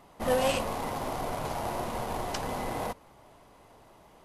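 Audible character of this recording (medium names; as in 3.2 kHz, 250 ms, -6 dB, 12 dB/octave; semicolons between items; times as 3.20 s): noise floor -57 dBFS; spectral tilt -4.5 dB/octave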